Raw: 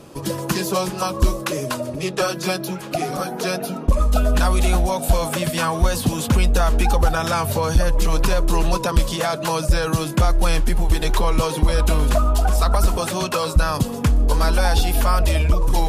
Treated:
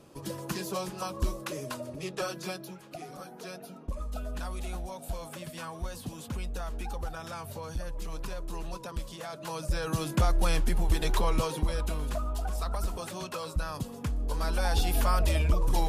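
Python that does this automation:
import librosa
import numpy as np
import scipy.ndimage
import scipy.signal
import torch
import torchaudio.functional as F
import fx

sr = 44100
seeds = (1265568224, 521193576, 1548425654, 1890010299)

y = fx.gain(x, sr, db=fx.line((2.35, -12.5), (2.87, -19.0), (9.2, -19.0), (10.11, -8.0), (11.31, -8.0), (11.96, -15.0), (14.21, -15.0), (14.88, -8.0)))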